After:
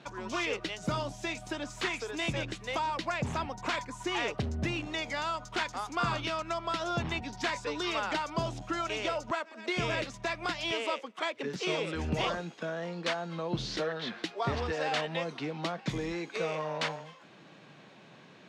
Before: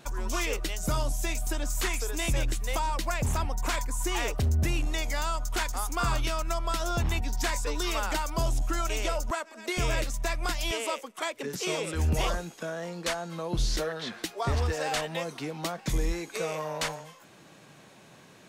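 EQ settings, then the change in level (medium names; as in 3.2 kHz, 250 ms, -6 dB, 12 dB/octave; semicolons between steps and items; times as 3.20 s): Chebyshev band-pass 150–3700 Hz, order 2; 0.0 dB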